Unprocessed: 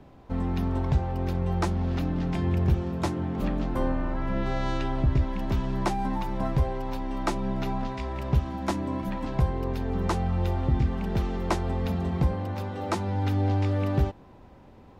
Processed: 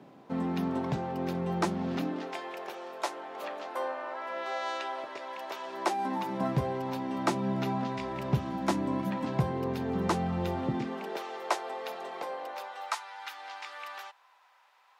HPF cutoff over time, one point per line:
HPF 24 dB/oct
1.94 s 160 Hz
2.41 s 510 Hz
5.61 s 510 Hz
6.63 s 120 Hz
10.57 s 120 Hz
11.24 s 490 Hz
12.47 s 490 Hz
13 s 1000 Hz

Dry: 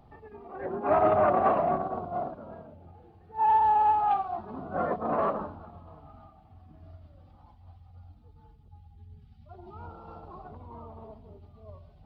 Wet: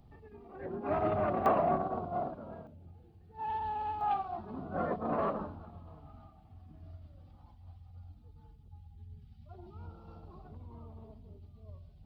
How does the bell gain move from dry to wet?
bell 920 Hz 2.7 oct
-10.5 dB
from 1.46 s -3 dB
from 2.67 s -14 dB
from 4.01 s -6 dB
from 9.67 s -12.5 dB

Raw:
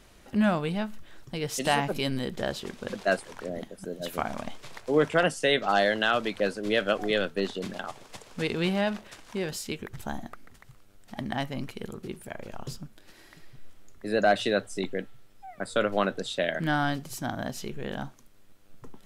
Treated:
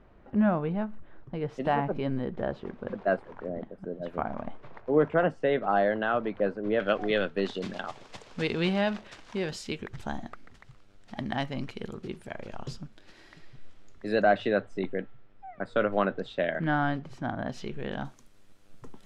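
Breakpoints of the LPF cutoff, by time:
1300 Hz
from 6.8 s 3000 Hz
from 7.46 s 5400 Hz
from 14.22 s 2100 Hz
from 17.49 s 3800 Hz
from 18.05 s 10000 Hz

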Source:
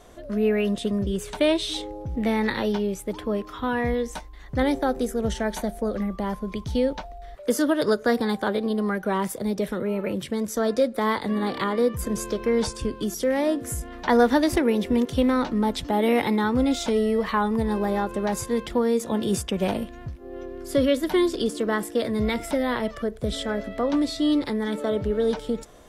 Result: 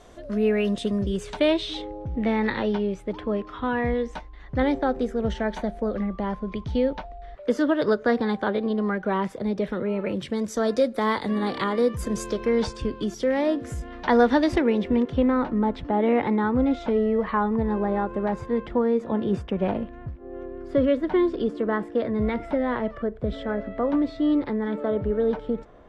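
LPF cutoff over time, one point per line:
1.03 s 8000 Hz
1.81 s 3200 Hz
9.62 s 3200 Hz
10.69 s 7800 Hz
12.26 s 7800 Hz
12.72 s 4300 Hz
14.52 s 4300 Hz
15.31 s 1800 Hz

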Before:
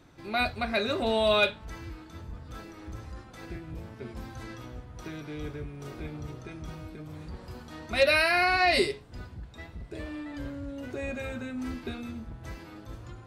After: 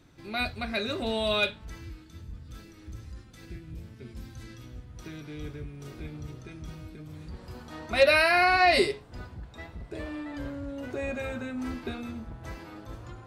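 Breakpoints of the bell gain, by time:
bell 820 Hz 2.1 oct
1.64 s -5.5 dB
2.07 s -13.5 dB
4.59 s -13.5 dB
5.1 s -6.5 dB
7.21 s -6.5 dB
7.76 s +3.5 dB

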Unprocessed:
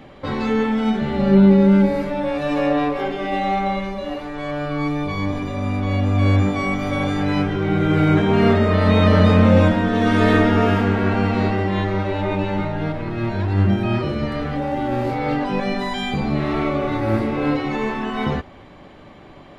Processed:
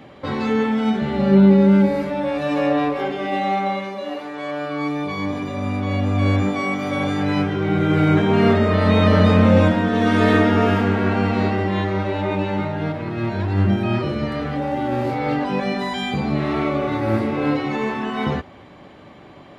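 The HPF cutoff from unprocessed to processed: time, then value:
3.1 s 77 Hz
3.89 s 250 Hz
4.69 s 250 Hz
5.65 s 90 Hz
6.29 s 90 Hz
6.66 s 200 Hz
7.22 s 75 Hz

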